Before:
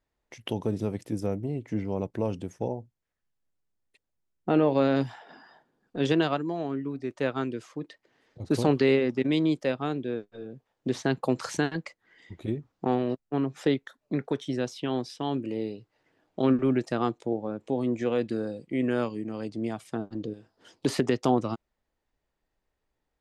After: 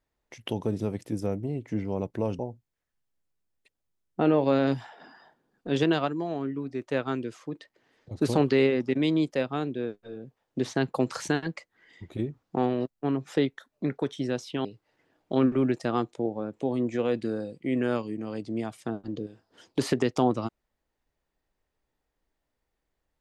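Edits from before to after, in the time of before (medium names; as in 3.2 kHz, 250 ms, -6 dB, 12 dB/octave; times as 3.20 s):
2.39–2.68 s: delete
14.94–15.72 s: delete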